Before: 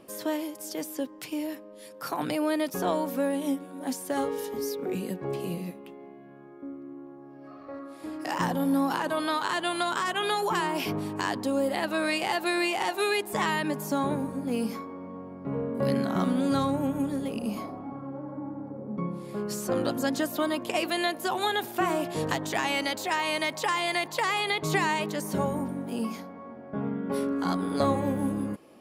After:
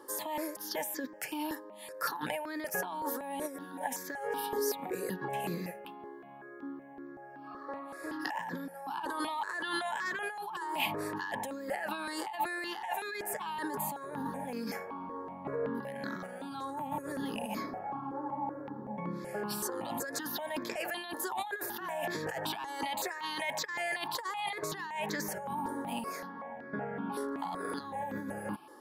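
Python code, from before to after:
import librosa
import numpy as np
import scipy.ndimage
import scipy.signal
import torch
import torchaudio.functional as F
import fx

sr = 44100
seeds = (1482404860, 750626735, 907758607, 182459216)

y = fx.small_body(x, sr, hz=(870.0, 1700.0), ring_ms=40, db=13)
y = fx.over_compress(y, sr, threshold_db=-31.0, ratio=-1.0)
y = fx.highpass(y, sr, hz=380.0, slope=6)
y = fx.phaser_held(y, sr, hz=5.3, low_hz=680.0, high_hz=2900.0)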